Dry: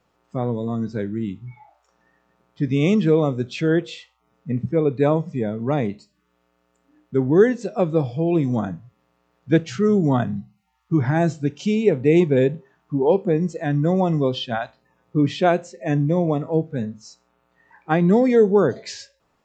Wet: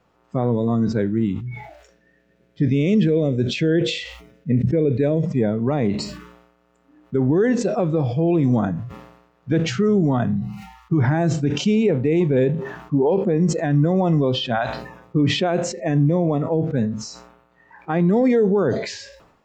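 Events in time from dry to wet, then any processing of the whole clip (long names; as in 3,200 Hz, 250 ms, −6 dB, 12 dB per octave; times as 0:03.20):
0:01.40–0:05.26: flat-topped bell 1,000 Hz −15.5 dB 1 octave
whole clip: high-shelf EQ 3,700 Hz −7.5 dB; brickwall limiter −15.5 dBFS; level that may fall only so fast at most 65 dB per second; level +5 dB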